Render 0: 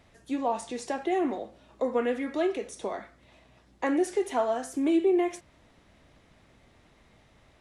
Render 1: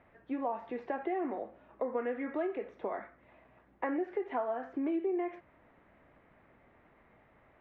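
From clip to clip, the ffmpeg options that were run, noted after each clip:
ffmpeg -i in.wav -af "lowpass=frequency=2100:width=0.5412,lowpass=frequency=2100:width=1.3066,lowshelf=frequency=190:gain=-10,acompressor=threshold=-32dB:ratio=3" out.wav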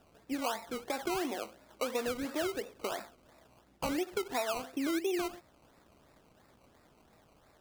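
ffmpeg -i in.wav -af "acrusher=samples=20:mix=1:aa=0.000001:lfo=1:lforange=12:lforate=2.9" out.wav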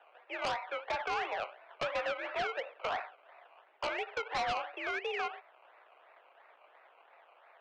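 ffmpeg -i in.wav -af "crystalizer=i=2.5:c=0,highpass=frequency=510:width_type=q:width=0.5412,highpass=frequency=510:width_type=q:width=1.307,lowpass=frequency=2700:width_type=q:width=0.5176,lowpass=frequency=2700:width_type=q:width=0.7071,lowpass=frequency=2700:width_type=q:width=1.932,afreqshift=57,aeval=exprs='0.0841*sin(PI/2*2.82*val(0)/0.0841)':channel_layout=same,volume=-7.5dB" out.wav

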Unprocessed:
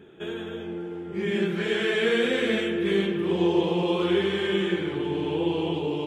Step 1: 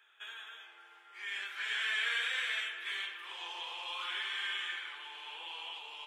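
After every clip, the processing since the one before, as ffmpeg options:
ffmpeg -i in.wav -af "highpass=frequency=1100:width=0.5412,highpass=frequency=1100:width=1.3066,volume=-4dB" out.wav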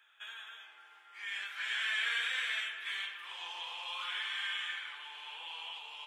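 ffmpeg -i in.wav -af "equalizer=frequency=380:width=1.7:gain=-9" out.wav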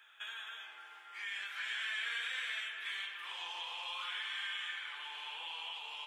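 ffmpeg -i in.wav -af "acompressor=threshold=-48dB:ratio=2,volume=4.5dB" out.wav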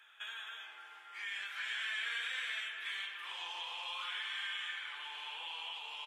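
ffmpeg -i in.wav -af "aresample=32000,aresample=44100" out.wav

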